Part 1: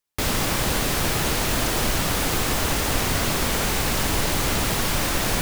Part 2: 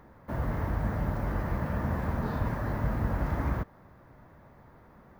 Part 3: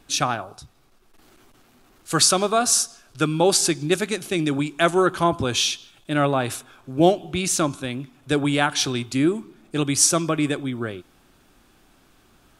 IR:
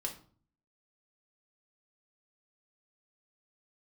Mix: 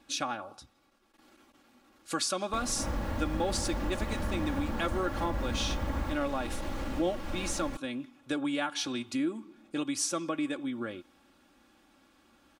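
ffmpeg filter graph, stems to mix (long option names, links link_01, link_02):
-filter_complex "[0:a]alimiter=limit=-14.5dB:level=0:latency=1:release=241,lowpass=frequency=1100:poles=1,adelay=2350,volume=-6.5dB[link_01];[1:a]adelay=2500,volume=0.5dB[link_02];[2:a]highpass=frequency=140:poles=1,highshelf=frequency=7500:gain=-9,volume=-6dB[link_03];[link_01][link_02][link_03]amix=inputs=3:normalize=0,aecho=1:1:3.6:0.64,acompressor=threshold=-33dB:ratio=2"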